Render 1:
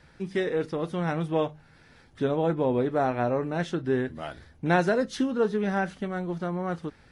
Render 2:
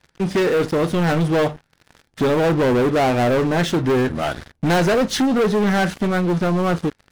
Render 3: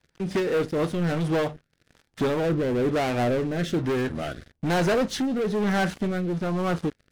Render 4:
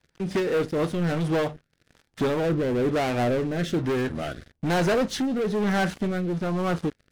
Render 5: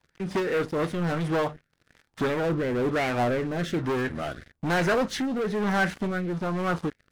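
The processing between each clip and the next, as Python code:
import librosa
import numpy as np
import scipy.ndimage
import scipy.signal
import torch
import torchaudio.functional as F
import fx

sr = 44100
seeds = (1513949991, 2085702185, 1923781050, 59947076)

y1 = fx.leveller(x, sr, passes=5)
y1 = y1 * 10.0 ** (-2.5 / 20.0)
y2 = fx.rotary_switch(y1, sr, hz=5.0, then_hz=1.1, switch_at_s=0.36)
y2 = y2 * 10.0 ** (-5.0 / 20.0)
y3 = y2
y4 = fx.bell_lfo(y3, sr, hz=2.8, low_hz=920.0, high_hz=2100.0, db=8)
y4 = y4 * 10.0 ** (-2.5 / 20.0)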